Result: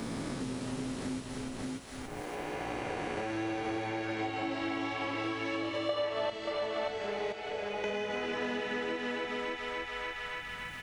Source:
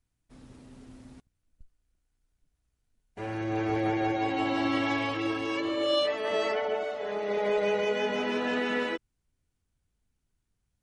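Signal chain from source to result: reverse spectral sustain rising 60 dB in 1.78 s; chorus 0.73 Hz, delay 17.5 ms, depth 6.8 ms; transient shaper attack +2 dB, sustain -5 dB; thinning echo 286 ms, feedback 45%, high-pass 790 Hz, level -5.5 dB; compression 2.5:1, threshold -49 dBFS, peak gain reduction 17 dB; 5.89–6.30 s: peaking EQ 810 Hz +14 dB 2.7 oct; 7.32–7.84 s: inharmonic resonator 73 Hz, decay 0.8 s, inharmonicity 0.008; delay 581 ms -6.5 dB; three bands compressed up and down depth 100%; trim +8 dB

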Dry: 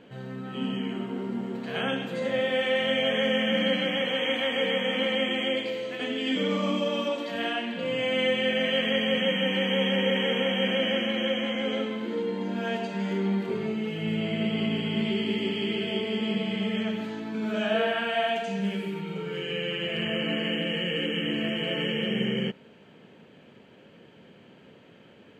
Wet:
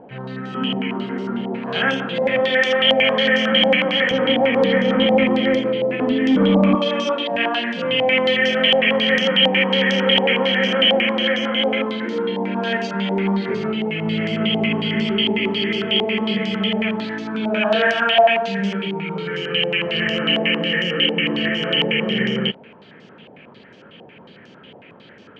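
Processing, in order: 4.11–6.75 s: tilt EQ -4 dB/octave; saturation -14.5 dBFS, distortion -23 dB; step-sequenced low-pass 11 Hz 790–5600 Hz; trim +6.5 dB

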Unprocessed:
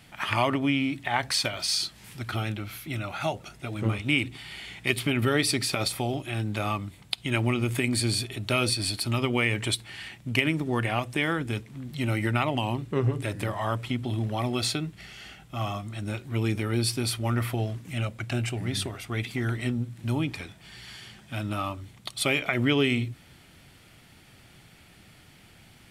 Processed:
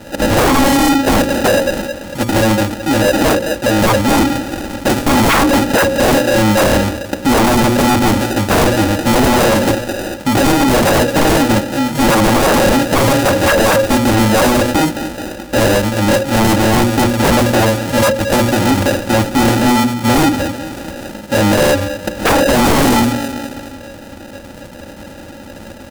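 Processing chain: low-pass 1.8 kHz 12 dB/octave; peaking EQ 560 Hz +11.5 dB 0.27 oct; feedback delay 216 ms, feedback 51%, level -17.5 dB; sample-and-hold 40×; bass shelf 70 Hz -8.5 dB; hum notches 60/120/180/240/300/360/420/480/540 Hz; comb 3.6 ms, depth 68%; sine folder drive 19 dB, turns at -7.5 dBFS

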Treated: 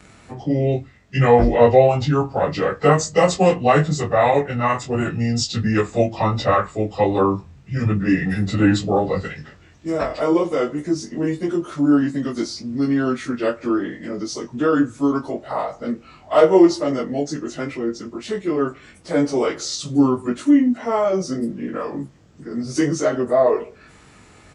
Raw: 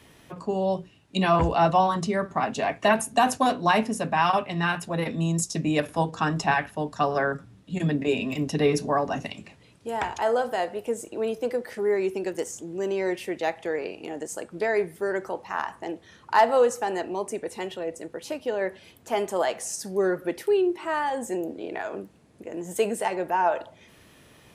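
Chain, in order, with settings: frequency-domain pitch shifter -6 st; doubling 21 ms -6.5 dB; trim +7.5 dB

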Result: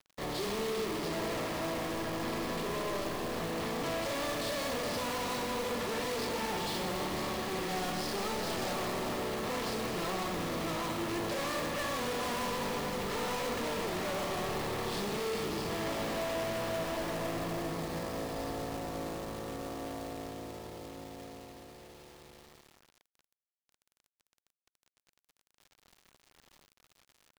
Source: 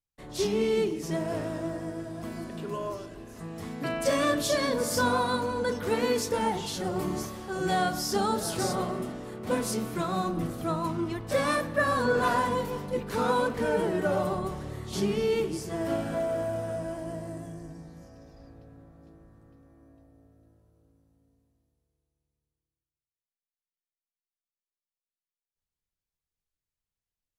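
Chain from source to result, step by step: spectral levelling over time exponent 0.6; resampled via 11.025 kHz; overload inside the chain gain 35 dB; Schroeder reverb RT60 3.5 s, combs from 26 ms, DRR 5.5 dB; companded quantiser 4-bit; band-stop 1.5 kHz, Q 12

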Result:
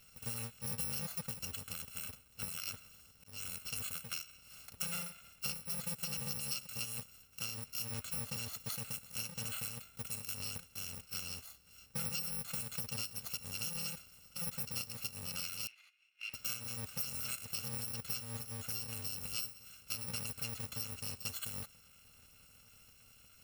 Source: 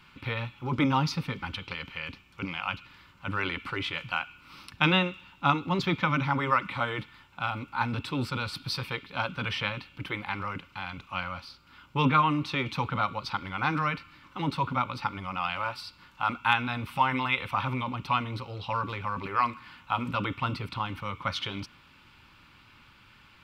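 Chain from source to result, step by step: bit-reversed sample order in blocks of 128 samples; 2.65–3.60 s: slow attack 454 ms; 15.67–16.34 s: band-pass filter 2.4 kHz, Q 4.5; compression 6:1, threshold -31 dBFS, peak gain reduction 13 dB; trim -5.5 dB

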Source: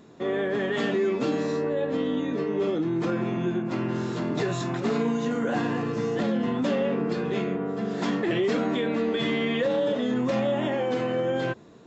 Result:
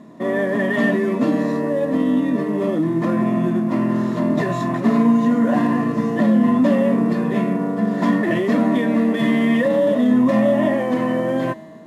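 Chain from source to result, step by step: CVSD coder 64 kbps; feedback comb 160 Hz, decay 1.8 s, mix 70%; small resonant body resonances 230/620/1000/1800 Hz, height 16 dB, ringing for 25 ms; trim +7 dB

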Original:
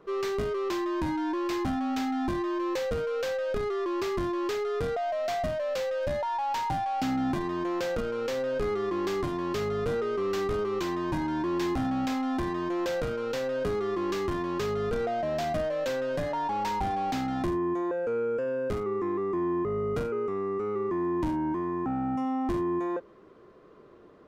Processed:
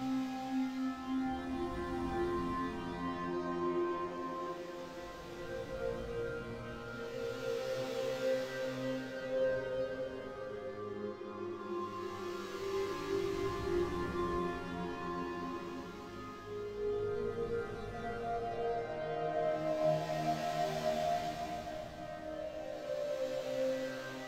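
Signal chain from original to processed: tremolo saw up 1.1 Hz, depth 85%; Paulstretch 6.2×, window 0.50 s, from 12.07 s; chorus 0.13 Hz, delay 15.5 ms, depth 3.7 ms; echo that smears into a reverb 684 ms, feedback 60%, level -15.5 dB; trim -1 dB

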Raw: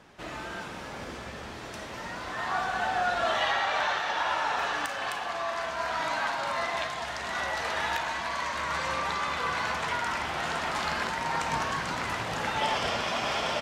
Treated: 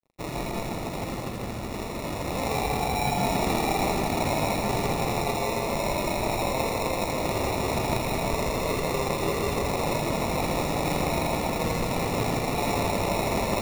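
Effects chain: tone controls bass +5 dB, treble +8 dB; in parallel at 0 dB: compressor with a negative ratio -33 dBFS, ratio -1; on the sum: crossover distortion -38.5 dBFS; flange 0.18 Hz, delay 6.7 ms, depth 3.2 ms, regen -58%; sample-and-hold 28×; two-band feedback delay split 1.8 kHz, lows 156 ms, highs 82 ms, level -3.5 dB; trim +2.5 dB

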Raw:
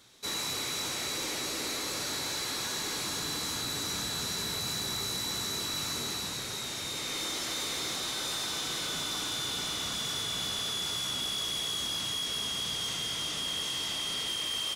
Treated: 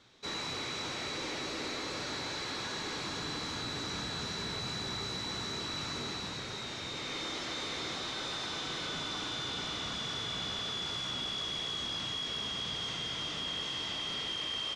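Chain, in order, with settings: distance through air 140 m

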